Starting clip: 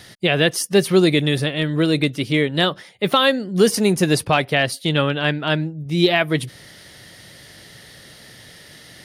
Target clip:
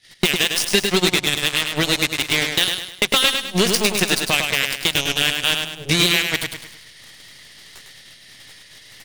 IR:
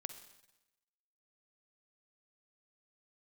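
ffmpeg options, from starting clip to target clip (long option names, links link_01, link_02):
-filter_complex "[0:a]agate=range=-30dB:threshold=-41dB:ratio=16:detection=peak,lowpass=9400,highshelf=frequency=1600:width_type=q:width=1.5:gain=10,acompressor=threshold=-30dB:ratio=8,aeval=exprs='0.112*(cos(1*acos(clip(val(0)/0.112,-1,1)))-cos(1*PI/2))+0.0398*(cos(2*acos(clip(val(0)/0.112,-1,1)))-cos(2*PI/2))+0.02*(cos(4*acos(clip(val(0)/0.112,-1,1)))-cos(4*PI/2))+0.02*(cos(7*acos(clip(val(0)/0.112,-1,1)))-cos(7*PI/2))':channel_layout=same,apsyclip=20.5dB,asplit=2[link_01][link_02];[link_02]aecho=0:1:103|206|309|412|515:0.531|0.218|0.0892|0.0366|0.015[link_03];[link_01][link_03]amix=inputs=2:normalize=0,volume=-6dB"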